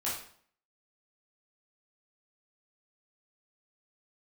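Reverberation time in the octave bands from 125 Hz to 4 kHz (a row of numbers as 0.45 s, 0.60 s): 0.60 s, 0.60 s, 0.55 s, 0.55 s, 0.50 s, 0.45 s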